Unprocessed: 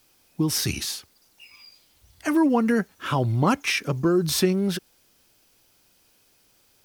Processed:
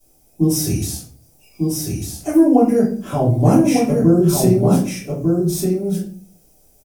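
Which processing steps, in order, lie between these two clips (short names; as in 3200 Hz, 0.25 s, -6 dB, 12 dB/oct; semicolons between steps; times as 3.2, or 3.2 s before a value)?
band shelf 2200 Hz -15 dB 2.5 oct; echo 1.198 s -4 dB; shoebox room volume 36 m³, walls mixed, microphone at 2.6 m; gain -5.5 dB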